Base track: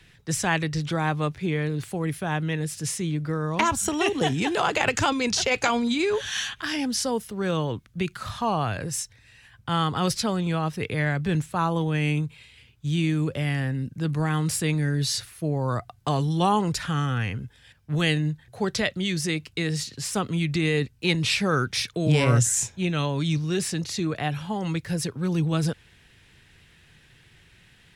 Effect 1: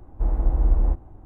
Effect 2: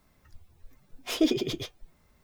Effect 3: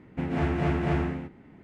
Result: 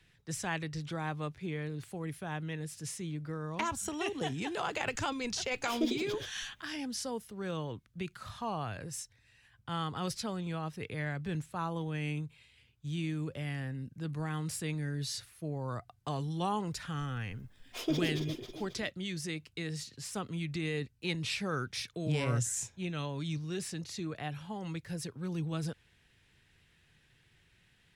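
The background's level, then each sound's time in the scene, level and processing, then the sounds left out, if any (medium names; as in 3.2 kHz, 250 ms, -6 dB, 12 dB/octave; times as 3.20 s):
base track -11.5 dB
4.60 s: add 2 -8.5 dB
16.67 s: add 2 -8.5 dB + echo whose repeats swap between lows and highs 135 ms, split 1.6 kHz, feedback 67%, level -4 dB
not used: 1, 3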